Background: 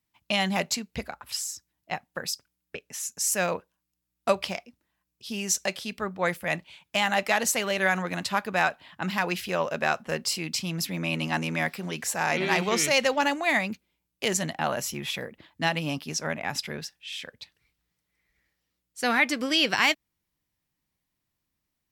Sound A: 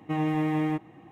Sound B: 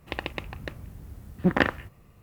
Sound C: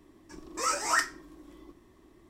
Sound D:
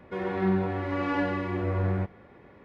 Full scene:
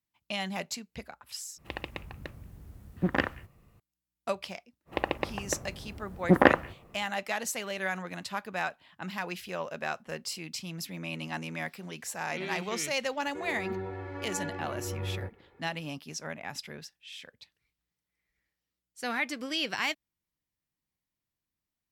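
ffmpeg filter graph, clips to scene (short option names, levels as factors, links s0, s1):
-filter_complex "[2:a]asplit=2[s0][s1];[0:a]volume=0.376[s2];[s1]equalizer=f=610:w=0.38:g=12[s3];[4:a]aecho=1:1:2.3:0.68[s4];[s2]asplit=2[s5][s6];[s5]atrim=end=1.584[s7];[s0]atrim=end=2.22,asetpts=PTS-STARTPTS,volume=0.531[s8];[s6]atrim=start=3.796[s9];[s3]atrim=end=2.22,asetpts=PTS-STARTPTS,volume=0.531,afade=t=in:d=0.05,afade=t=out:st=2.17:d=0.05,adelay=213885S[s10];[s4]atrim=end=2.64,asetpts=PTS-STARTPTS,volume=0.299,afade=t=in:d=0.004:c=hsin,afade=t=out:st=2.636:d=0.004:c=hsin,adelay=13230[s11];[s7][s8]acrossfade=d=0.004:c1=hsin:c2=hsin[s12];[s12][s9]acrossfade=d=0.004:c1=hsin:c2=hsin[s13];[s13][s10][s11]amix=inputs=3:normalize=0"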